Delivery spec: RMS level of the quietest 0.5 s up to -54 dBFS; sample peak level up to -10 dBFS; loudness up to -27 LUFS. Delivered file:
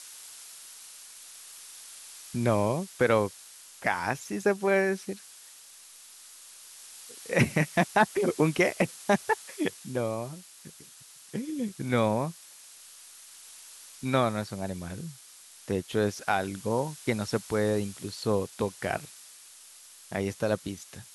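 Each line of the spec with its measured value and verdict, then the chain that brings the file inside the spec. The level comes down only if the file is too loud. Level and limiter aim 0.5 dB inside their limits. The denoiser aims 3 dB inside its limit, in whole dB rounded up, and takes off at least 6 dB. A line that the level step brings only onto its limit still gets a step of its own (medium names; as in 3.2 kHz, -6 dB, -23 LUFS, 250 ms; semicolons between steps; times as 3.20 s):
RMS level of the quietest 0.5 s -52 dBFS: fail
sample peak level -9.0 dBFS: fail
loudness -29.0 LUFS: pass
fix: noise reduction 6 dB, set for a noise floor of -52 dBFS; peak limiter -10.5 dBFS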